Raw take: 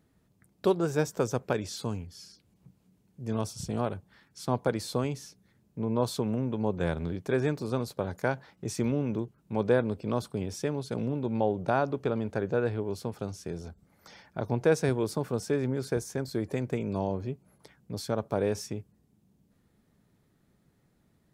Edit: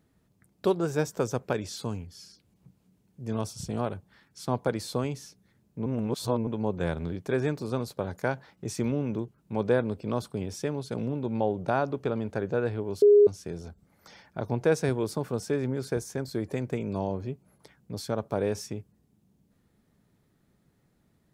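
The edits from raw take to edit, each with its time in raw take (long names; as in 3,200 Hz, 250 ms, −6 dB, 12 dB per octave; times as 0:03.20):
0:05.86–0:06.47: reverse
0:13.02–0:13.27: beep over 412 Hz −13 dBFS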